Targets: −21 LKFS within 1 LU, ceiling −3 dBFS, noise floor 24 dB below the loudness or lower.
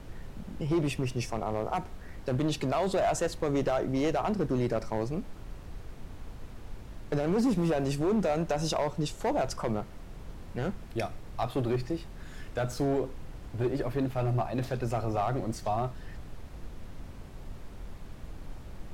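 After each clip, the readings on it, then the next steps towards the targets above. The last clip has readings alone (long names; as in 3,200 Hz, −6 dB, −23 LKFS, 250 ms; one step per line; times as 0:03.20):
share of clipped samples 1.9%; peaks flattened at −22.0 dBFS; background noise floor −45 dBFS; target noise floor −55 dBFS; integrated loudness −31.0 LKFS; sample peak −22.0 dBFS; target loudness −21.0 LKFS
→ clipped peaks rebuilt −22 dBFS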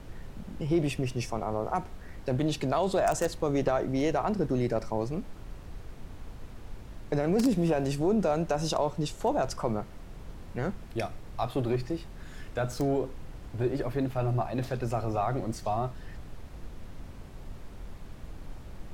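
share of clipped samples 0.0%; background noise floor −45 dBFS; target noise floor −54 dBFS
→ noise reduction from a noise print 9 dB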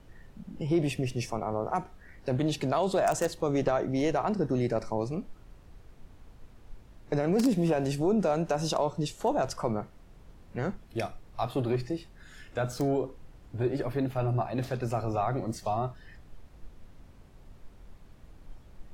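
background noise floor −54 dBFS; integrated loudness −30.0 LKFS; sample peak −13.0 dBFS; target loudness −21.0 LKFS
→ level +9 dB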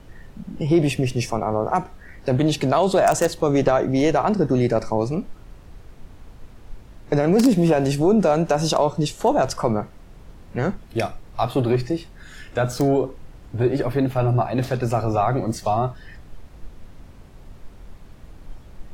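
integrated loudness −21.0 LKFS; sample peak −4.0 dBFS; background noise floor −45 dBFS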